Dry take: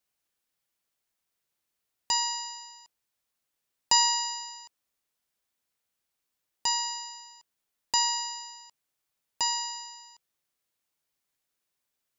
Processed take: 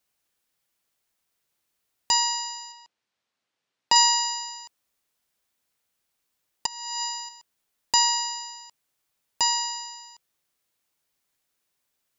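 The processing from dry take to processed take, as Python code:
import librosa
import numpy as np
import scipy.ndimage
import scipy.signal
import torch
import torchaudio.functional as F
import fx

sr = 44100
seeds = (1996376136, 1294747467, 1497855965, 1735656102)

y = fx.bandpass_edges(x, sr, low_hz=120.0, high_hz=4700.0, at=(2.72, 3.96))
y = fx.over_compress(y, sr, threshold_db=-39.0, ratio=-1.0, at=(6.66, 7.29))
y = y * librosa.db_to_amplitude(5.0)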